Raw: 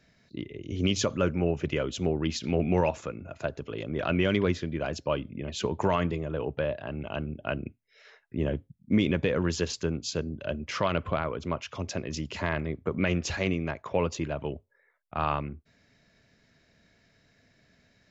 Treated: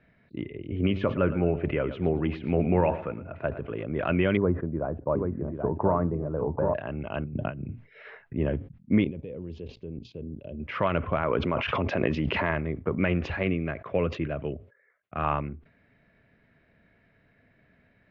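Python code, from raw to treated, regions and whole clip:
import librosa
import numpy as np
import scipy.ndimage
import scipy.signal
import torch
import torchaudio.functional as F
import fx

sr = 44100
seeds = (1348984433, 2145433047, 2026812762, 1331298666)

y = fx.chain(x, sr, fx.bass_treble(bass_db=0, treble_db=-13),
    fx.echo_feedback(ms=113, feedback_pct=31, wet_db=-14.0), at=(0.67, 3.86))
y = fx.chain(y, sr, fx.cheby2_lowpass(hz=6500.0, order=4, stop_db=80),
    fx.echo_single(ms=780, db=-5.5), at=(4.37, 6.74))
y = fx.chain(y, sr, fx.peak_eq(hz=130.0, db=11.5, octaves=1.8),
    fx.over_compress(threshold_db=-36.0, ratio=-1.0), at=(7.24, 8.35))
y = fx.chain(y, sr, fx.level_steps(step_db=19),
    fx.curve_eq(hz=(480.0, 1600.0, 2300.0, 3500.0), db=(0, -24, -10, -6)), at=(9.04, 10.6))
y = fx.chain(y, sr, fx.low_shelf(hz=92.0, db=-11.5),
    fx.env_flatten(amount_pct=100), at=(11.23, 12.51))
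y = fx.chain(y, sr, fx.highpass(hz=53.0, slope=12),
    fx.peak_eq(hz=900.0, db=-12.0, octaves=0.34), at=(13.43, 15.24))
y = scipy.signal.sosfilt(scipy.signal.butter(4, 2600.0, 'lowpass', fs=sr, output='sos'), y)
y = fx.sustainer(y, sr, db_per_s=150.0)
y = y * librosa.db_to_amplitude(1.5)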